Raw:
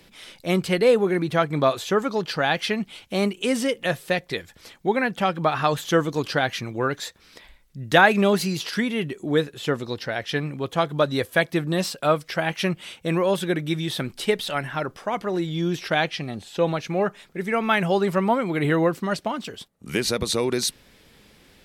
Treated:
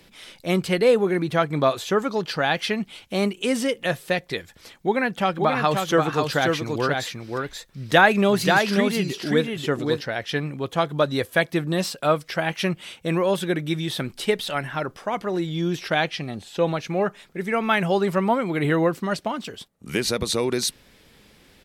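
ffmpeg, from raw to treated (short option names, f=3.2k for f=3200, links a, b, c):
-filter_complex "[0:a]asplit=3[a][b][c];[a]afade=t=out:st=5.25:d=0.02[d];[b]aecho=1:1:534:0.631,afade=t=in:st=5.25:d=0.02,afade=t=out:st=10:d=0.02[e];[c]afade=t=in:st=10:d=0.02[f];[d][e][f]amix=inputs=3:normalize=0"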